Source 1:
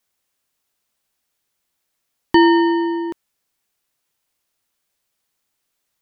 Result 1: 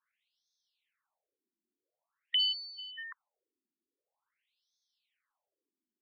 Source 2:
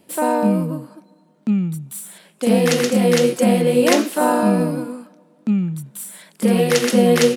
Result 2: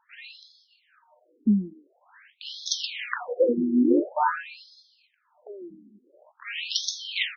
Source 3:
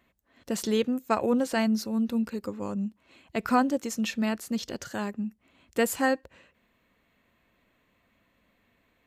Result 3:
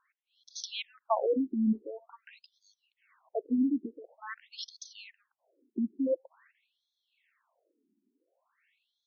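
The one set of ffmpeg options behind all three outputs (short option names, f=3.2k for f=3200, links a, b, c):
-af "bandreject=f=4.7k:w=18,afftfilt=real='re*between(b*sr/1024,270*pow(4700/270,0.5+0.5*sin(2*PI*0.47*pts/sr))/1.41,270*pow(4700/270,0.5+0.5*sin(2*PI*0.47*pts/sr))*1.41)':imag='im*between(b*sr/1024,270*pow(4700/270,0.5+0.5*sin(2*PI*0.47*pts/sr))/1.41,270*pow(4700/270,0.5+0.5*sin(2*PI*0.47*pts/sr))*1.41)':win_size=1024:overlap=0.75"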